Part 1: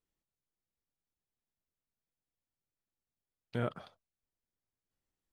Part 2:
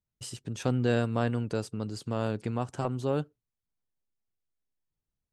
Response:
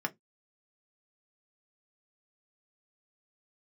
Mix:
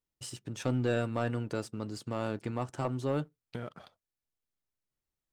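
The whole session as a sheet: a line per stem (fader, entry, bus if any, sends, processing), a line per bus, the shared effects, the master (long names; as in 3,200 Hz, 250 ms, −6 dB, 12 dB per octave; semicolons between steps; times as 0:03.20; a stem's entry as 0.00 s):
−1.5 dB, 0.00 s, no send, downward compressor 6 to 1, threshold −38 dBFS, peak gain reduction 10 dB
−7.0 dB, 0.00 s, send −11.5 dB, no processing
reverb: on, RT60 0.15 s, pre-delay 3 ms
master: leveller curve on the samples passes 1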